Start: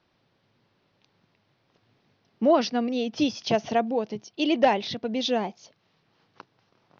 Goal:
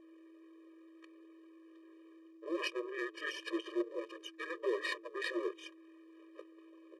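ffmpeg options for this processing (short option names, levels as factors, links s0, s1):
-af "adynamicequalizer=threshold=0.0158:dfrequency=370:dqfactor=1.1:tfrequency=370:tqfactor=1.1:attack=5:release=100:ratio=0.375:range=4:mode=cutabove:tftype=bell,areverse,acompressor=threshold=0.0282:ratio=10,areverse,aeval=exprs='val(0)+0.00224*sin(2*PI*650*n/s)':c=same,aeval=exprs='max(val(0),0)':c=same,afreqshift=-33,asetrate=23361,aresample=44100,atempo=1.88775,afftfilt=real='re*eq(mod(floor(b*sr/1024/320),2),1)':imag='im*eq(mod(floor(b*sr/1024/320),2),1)':win_size=1024:overlap=0.75,volume=2.66"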